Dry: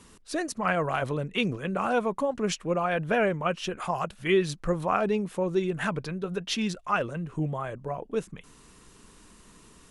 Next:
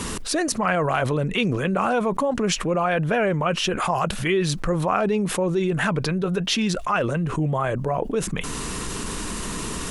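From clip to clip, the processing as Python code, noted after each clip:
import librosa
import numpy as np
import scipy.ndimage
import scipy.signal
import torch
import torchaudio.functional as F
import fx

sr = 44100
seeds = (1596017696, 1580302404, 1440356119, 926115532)

y = fx.env_flatten(x, sr, amount_pct=70)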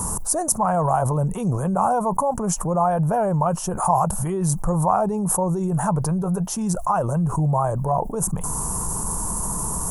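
y = fx.curve_eq(x, sr, hz=(170.0, 270.0, 460.0, 890.0, 2100.0, 3800.0, 6300.0, 11000.0), db=(0, -11, -8, 5, -27, -27, -3, 9))
y = F.gain(torch.from_numpy(y), 4.0).numpy()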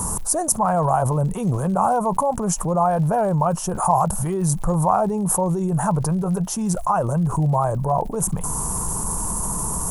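y = fx.dmg_crackle(x, sr, seeds[0], per_s=87.0, level_db=-35.0)
y = F.gain(torch.from_numpy(y), 1.0).numpy()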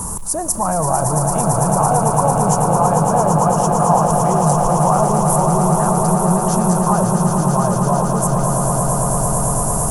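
y = fx.echo_swell(x, sr, ms=112, loudest=8, wet_db=-7.5)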